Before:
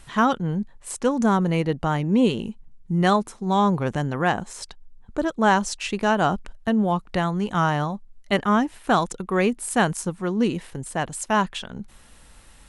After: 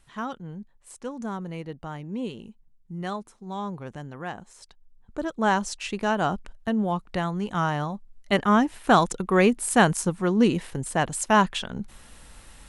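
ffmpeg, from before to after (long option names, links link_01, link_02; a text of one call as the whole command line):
ffmpeg -i in.wav -af "volume=2dB,afade=type=in:start_time=4.63:duration=0.84:silence=0.354813,afade=type=in:start_time=7.82:duration=1.15:silence=0.501187" out.wav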